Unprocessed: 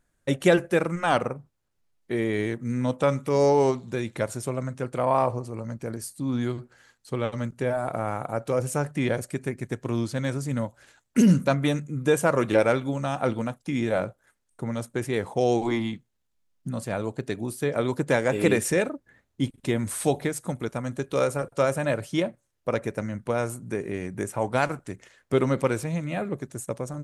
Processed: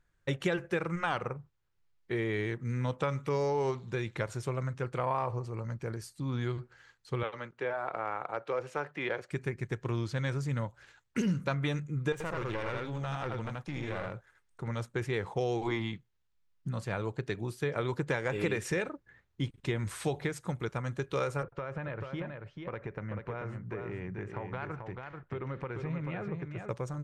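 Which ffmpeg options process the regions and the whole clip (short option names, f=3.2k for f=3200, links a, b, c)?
-filter_complex "[0:a]asettb=1/sr,asplit=3[a][b][c];[a]atrim=end=7.234[d];[b]atrim=start=7.23:end=9.31,asetpts=PTS-STARTPTS,afade=t=in:d=0.004:c=qsin,afade=t=out:st=2.076:d=0.004:c=qsin,acrossover=split=290 4400:gain=0.112 1 0.158[e][f][g];[e][f][g]amix=inputs=3:normalize=0,asoftclip=type=hard:threshold=-17.5dB[h];[c]atrim=start=9.306[i];[d][h]acrossfade=d=0.004:c1=hsin:c2=qsin[j];[j][i]acrossfade=d=0.004:c1=qsin:c2=hsin,asettb=1/sr,asplit=3[k][l][m];[k]atrim=end=12.124[n];[l]atrim=start=12.12:end=14.68,asetpts=PTS-STARTPTS,afade=t=in:d=0.004:c=qsin,afade=t=out:st=2.556:d=0.004:c=qsin,aecho=1:1:81:0.708,atrim=end_sample=112896,acompressor=threshold=-29dB:ratio=2.5:attack=3.2:release=140:knee=1:detection=peak,aeval=exprs='clip(val(0),-1,0.0237)':c=same[o];[m]atrim=start=14.676[p];[n][o]acrossfade=d=0.004:c1=hsin:c2=qsin[q];[q][p]acrossfade=d=0.004:c1=qsin:c2=hsin,asettb=1/sr,asplit=3[r][s][t];[r]atrim=end=21.434[u];[s]atrim=start=21.43:end=26.69,asetpts=PTS-STARTPTS,afade=t=in:d=0.004:c=qsin,afade=t=out:st=5.256:d=0.004:c=qsin,lowpass=2.4k,acompressor=threshold=-29dB:ratio=8:attack=3.2:release=140:knee=1:detection=peak,aecho=1:1:438:0.531,atrim=end_sample=231966[v];[t]atrim=start=26.686[w];[u][v]acrossfade=d=0.004:c1=hsin:c2=qsin[x];[x][w]acrossfade=d=0.004:c1=qsin:c2=hsin,equalizer=f=250:t=o:w=0.67:g=-11,equalizer=f=630:t=o:w=0.67:g=-8,equalizer=f=10k:t=o:w=0.67:g=-9,acompressor=threshold=-27dB:ratio=5,highshelf=f=6.4k:g=-10.5"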